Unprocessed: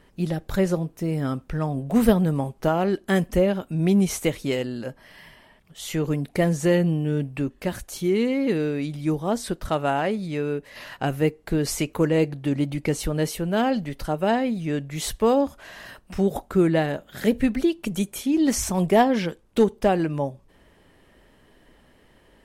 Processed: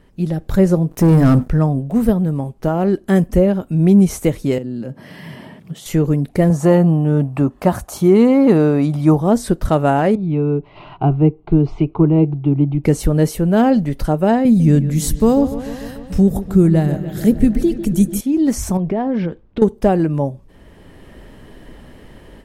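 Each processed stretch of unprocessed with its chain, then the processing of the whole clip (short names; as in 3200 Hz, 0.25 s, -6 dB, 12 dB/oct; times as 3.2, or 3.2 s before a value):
0.91–1.48 notches 50/100/150/200/250 Hz + sample leveller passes 3
4.58–5.86 HPF 130 Hz 24 dB/oct + compressor 2.5:1, threshold -45 dBFS + low shelf 380 Hz +12 dB
6.5–9.21 HPF 62 Hz + band shelf 910 Hz +10 dB 1.3 oct
10.15–12.84 LPF 2700 Hz 24 dB/oct + fixed phaser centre 350 Hz, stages 8
14.45–18.21 tone controls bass +10 dB, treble +10 dB + dark delay 0.147 s, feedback 71%, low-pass 3500 Hz, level -13 dB
18.77–19.62 compressor 3:1, threshold -27 dBFS + air absorption 250 m
whole clip: low shelf 430 Hz +8 dB; AGC; dynamic EQ 3100 Hz, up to -6 dB, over -38 dBFS, Q 0.88; gain -1 dB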